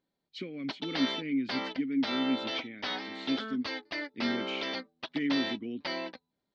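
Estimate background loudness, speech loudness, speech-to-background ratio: −36.0 LKFS, −35.0 LKFS, 1.0 dB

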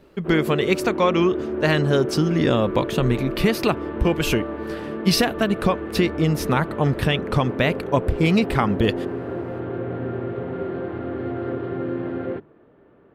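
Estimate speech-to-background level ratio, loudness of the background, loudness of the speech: 7.5 dB, −29.0 LKFS, −21.5 LKFS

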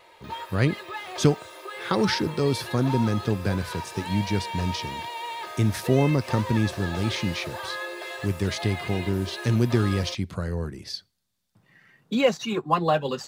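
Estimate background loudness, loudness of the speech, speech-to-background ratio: −35.0 LKFS, −26.0 LKFS, 9.0 dB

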